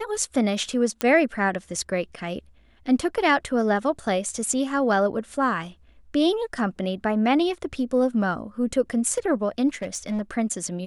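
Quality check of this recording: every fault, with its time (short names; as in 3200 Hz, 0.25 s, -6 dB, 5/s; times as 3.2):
1.01 pop -8 dBFS
9.74–10.21 clipped -23 dBFS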